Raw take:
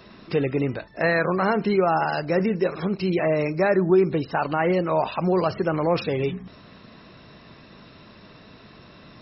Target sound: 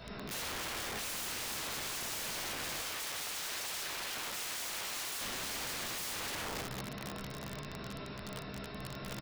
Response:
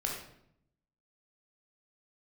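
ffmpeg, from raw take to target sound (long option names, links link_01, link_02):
-filter_complex "[0:a]asplit=2[link_01][link_02];[link_02]adelay=15,volume=-5.5dB[link_03];[link_01][link_03]amix=inputs=2:normalize=0,alimiter=limit=-19.5dB:level=0:latency=1:release=11[link_04];[1:a]atrim=start_sample=2205[link_05];[link_04][link_05]afir=irnorm=-1:irlink=0,acompressor=threshold=-22dB:ratio=8,aeval=exprs='(mod(42.2*val(0)+1,2)-1)/42.2':channel_layout=same,asettb=1/sr,asplit=3[link_06][link_07][link_08];[link_06]atrim=end=2.824[link_09];[link_07]atrim=start=2.82:end=5.21,asetpts=PTS-STARTPTS,afade=type=in:duration=0.004:curve=qsin,afade=type=out:start_time=2.386:duration=0.004:curve=qsin,lowshelf=frequency=390:gain=-9[link_10];[link_08]atrim=start=5.206[link_11];[link_09][link_10]acrossfade=duration=0.004:curve1=hsin:curve2=qsin[link_12];[link_12][link_11]acrossfade=duration=0.004:curve1=qsin:curve2=hsin,volume=-2dB"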